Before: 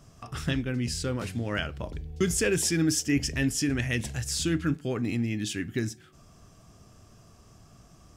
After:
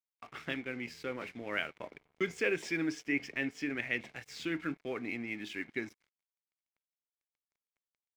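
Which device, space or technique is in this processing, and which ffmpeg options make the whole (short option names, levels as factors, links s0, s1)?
pocket radio on a weak battery: -filter_complex "[0:a]highpass=330,lowpass=3000,aeval=exprs='sgn(val(0))*max(abs(val(0))-0.00251,0)':c=same,equalizer=f=2200:t=o:w=0.25:g=11.5,asettb=1/sr,asplit=3[s0][s1][s2];[s0]atrim=end=2.924[s3];[s1]atrim=start=2.92:end=4.16,asetpts=PTS-STARTPTS,afade=t=in:d=0.004:c=qsin,afade=t=out:st=1.236:d=0.004:c=qsin,highshelf=f=5700:g=-4.5[s4];[s2]atrim=start=4.156[s5];[s3][s4]acrossfade=d=0.004:c1=hsin:c2=qsin[s6];[s6][s5]acrossfade=d=0.004:c1=qsin:c2=hsin,volume=0.631"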